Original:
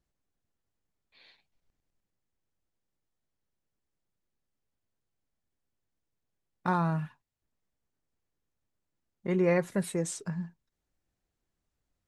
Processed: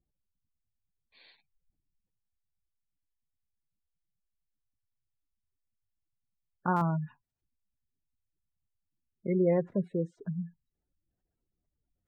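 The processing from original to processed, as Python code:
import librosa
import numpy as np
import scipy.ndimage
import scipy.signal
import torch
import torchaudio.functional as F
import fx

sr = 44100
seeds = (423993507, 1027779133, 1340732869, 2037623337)

y = fx.spec_gate(x, sr, threshold_db=-20, keep='strong')
y = fx.lowpass(y, sr, hz=1000.0, slope=12, at=(9.5, 10.26), fade=0.02)
y = fx.buffer_glitch(y, sr, at_s=(6.76,), block=256, repeats=8)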